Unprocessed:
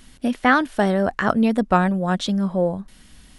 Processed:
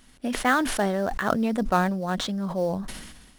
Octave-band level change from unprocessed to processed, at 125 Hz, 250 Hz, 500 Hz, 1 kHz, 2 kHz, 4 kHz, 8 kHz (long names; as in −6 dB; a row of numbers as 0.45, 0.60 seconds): −6.0, −6.5, −5.0, −4.5, −5.0, −1.5, +5.0 decibels